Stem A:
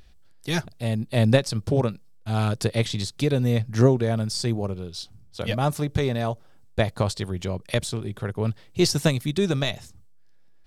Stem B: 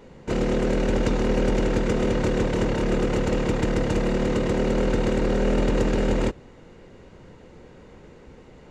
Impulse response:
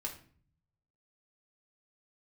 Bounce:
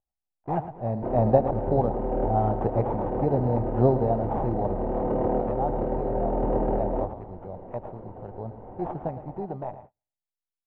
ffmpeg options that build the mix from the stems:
-filter_complex "[0:a]acrusher=samples=10:mix=1:aa=0.000001,volume=-5dB,afade=type=out:start_time=5.3:duration=0.37:silence=0.375837,asplit=3[link_01][link_02][link_03];[link_02]volume=-12dB[link_04];[1:a]acompressor=threshold=-29dB:ratio=2,adelay=750,volume=-2dB,asplit=2[link_05][link_06];[link_06]volume=-4.5dB[link_07];[link_03]apad=whole_len=416858[link_08];[link_05][link_08]sidechaincompress=threshold=-39dB:ratio=8:attack=16:release=332[link_09];[2:a]atrim=start_sample=2205[link_10];[link_07][link_10]afir=irnorm=-1:irlink=0[link_11];[link_04]aecho=0:1:112|224|336|448|560:1|0.36|0.13|0.0467|0.0168[link_12];[link_01][link_09][link_11][link_12]amix=inputs=4:normalize=0,lowpass=frequency=770:width_type=q:width=4.9,agate=range=-34dB:threshold=-46dB:ratio=16:detection=peak"

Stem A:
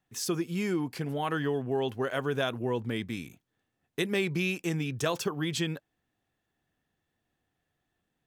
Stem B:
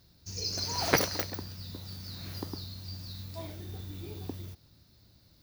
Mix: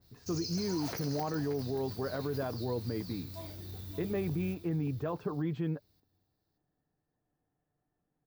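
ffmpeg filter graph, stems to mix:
ffmpeg -i stem1.wav -i stem2.wav -filter_complex "[0:a]lowpass=1000,aecho=1:1:6.7:0.35,volume=-1.5dB[link_01];[1:a]highshelf=frequency=9900:gain=8,acompressor=threshold=-32dB:ratio=5,adynamicequalizer=threshold=0.002:dfrequency=2000:dqfactor=0.7:tfrequency=2000:tqfactor=0.7:attack=5:release=100:ratio=0.375:range=1.5:mode=cutabove:tftype=highshelf,volume=-3.5dB,asplit=2[link_02][link_03];[link_03]volume=-9.5dB,aecho=0:1:579|1158|1737|2316:1|0.23|0.0529|0.0122[link_04];[link_01][link_02][link_04]amix=inputs=3:normalize=0,alimiter=level_in=1.5dB:limit=-24dB:level=0:latency=1:release=17,volume=-1.5dB" out.wav

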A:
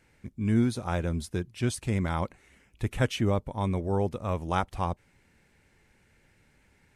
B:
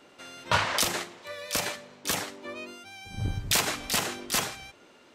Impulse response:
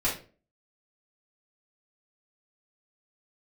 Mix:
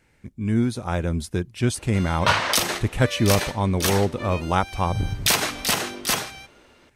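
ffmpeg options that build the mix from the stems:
-filter_complex "[0:a]volume=2dB[link_01];[1:a]bandreject=frequency=7300:width=11,adelay=1750,volume=1dB[link_02];[link_01][link_02]amix=inputs=2:normalize=0,dynaudnorm=framelen=390:gausssize=5:maxgain=4.5dB"

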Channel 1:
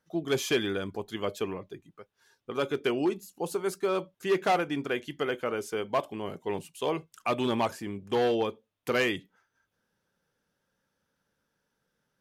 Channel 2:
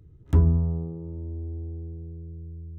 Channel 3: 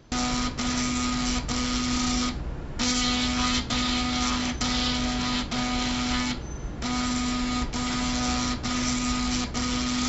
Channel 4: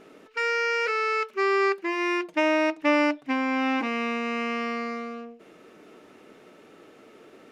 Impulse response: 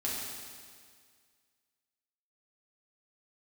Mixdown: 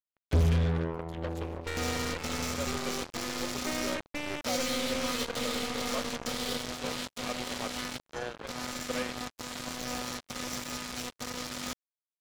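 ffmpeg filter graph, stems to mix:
-filter_complex "[0:a]highpass=frequency=550:poles=1,volume=-12.5dB[link_01];[1:a]adynamicequalizer=threshold=0.00708:dfrequency=490:dqfactor=1.2:tfrequency=490:tqfactor=1.2:attack=5:release=100:ratio=0.375:range=2:mode=boostabove:tftype=bell,volume=-1.5dB[link_02];[2:a]highpass=89,adelay=1650,volume=-8.5dB[link_03];[3:a]equalizer=frequency=830:width_type=o:width=0.48:gain=-14,acompressor=threshold=-40dB:ratio=2.5,aeval=exprs='max(val(0),0)':channel_layout=same,adelay=1300,volume=0.5dB[link_04];[link_01][link_02][link_03][link_04]amix=inputs=4:normalize=0,equalizer=frequency=530:width_type=o:width=0.28:gain=14.5,acrusher=bits=4:mix=0:aa=0.5,asoftclip=type=tanh:threshold=-19dB"

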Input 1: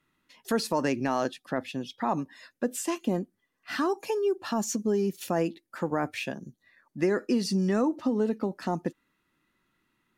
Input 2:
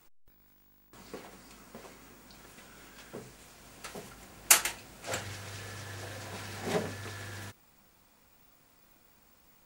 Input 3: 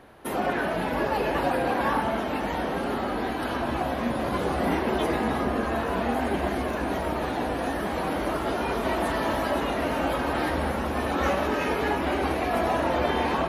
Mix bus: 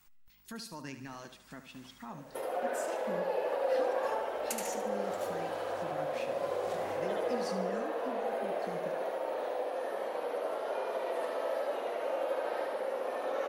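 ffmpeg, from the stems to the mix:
ffmpeg -i stem1.wav -i stem2.wav -i stem3.wav -filter_complex "[0:a]equalizer=frequency=530:width_type=o:width=1.9:gain=-12.5,flanger=delay=3.3:depth=4:regen=-62:speed=0.55:shape=triangular,volume=-7dB,asplit=3[link_01][link_02][link_03];[link_02]volume=-11dB[link_04];[1:a]equalizer=frequency=420:width_type=o:width=1.2:gain=-14,volume=-2dB,asplit=2[link_05][link_06];[link_06]volume=-20dB[link_07];[2:a]highpass=frequency=520:width_type=q:width=4.9,adelay=2100,volume=-9.5dB,asplit=2[link_08][link_09];[link_09]volume=-7.5dB[link_10];[link_03]apad=whole_len=425621[link_11];[link_05][link_11]sidechaincompress=threshold=-49dB:ratio=8:attack=33:release=636[link_12];[link_12][link_08]amix=inputs=2:normalize=0,acompressor=threshold=-36dB:ratio=6,volume=0dB[link_13];[link_04][link_07][link_10]amix=inputs=3:normalize=0,aecho=0:1:73|146|219|292|365|438:1|0.46|0.212|0.0973|0.0448|0.0206[link_14];[link_01][link_13][link_14]amix=inputs=3:normalize=0" out.wav

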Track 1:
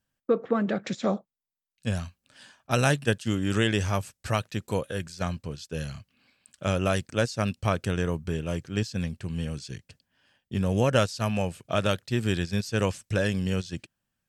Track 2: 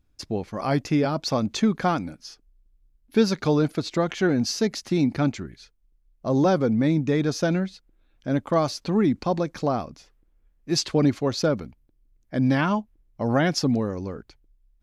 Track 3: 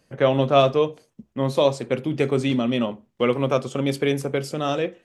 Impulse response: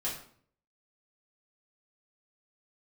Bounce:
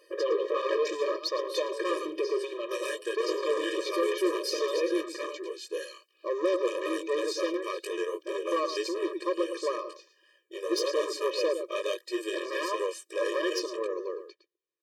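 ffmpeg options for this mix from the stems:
-filter_complex "[0:a]flanger=delay=17.5:depth=4.3:speed=2.9,volume=1.5dB[link_01];[1:a]lowpass=5700,volume=1dB,asplit=2[link_02][link_03];[link_03]volume=-11.5dB[link_04];[2:a]equalizer=frequency=7000:width_type=o:width=0.34:gain=-12.5,acompressor=threshold=-27dB:ratio=6,volume=2.5dB,asplit=2[link_05][link_06];[link_06]volume=-12.5dB[link_07];[link_01][link_05]amix=inputs=2:normalize=0,acontrast=36,alimiter=limit=-14.5dB:level=0:latency=1:release=59,volume=0dB[link_08];[link_04][link_07]amix=inputs=2:normalize=0,aecho=0:1:111:1[link_09];[link_02][link_08][link_09]amix=inputs=3:normalize=0,equalizer=frequency=250:width=1.5:gain=4,asoftclip=type=tanh:threshold=-19.5dB,afftfilt=real='re*eq(mod(floor(b*sr/1024/320),2),1)':imag='im*eq(mod(floor(b*sr/1024/320),2),1)':win_size=1024:overlap=0.75"

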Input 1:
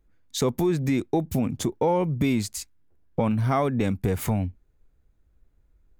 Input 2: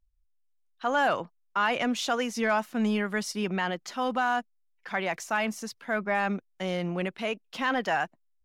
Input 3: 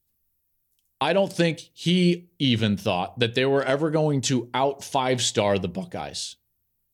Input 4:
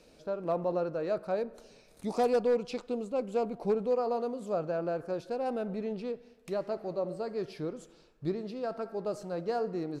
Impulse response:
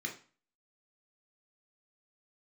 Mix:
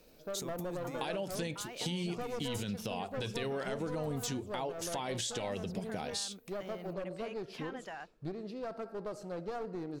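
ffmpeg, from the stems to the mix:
-filter_complex "[0:a]acompressor=threshold=-31dB:ratio=3,highshelf=frequency=3600:gain=12,volume=-11.5dB[link_01];[1:a]acompressor=threshold=-30dB:ratio=6,volume=-11dB[link_02];[2:a]highshelf=frequency=4800:gain=6,alimiter=limit=-16.5dB:level=0:latency=1:release=32,volume=-2.5dB[link_03];[3:a]aeval=exprs='clip(val(0),-1,0.02)':channel_layout=same,volume=-3dB[link_04];[link_01][link_02][link_03][link_04]amix=inputs=4:normalize=0,acompressor=threshold=-35dB:ratio=4"

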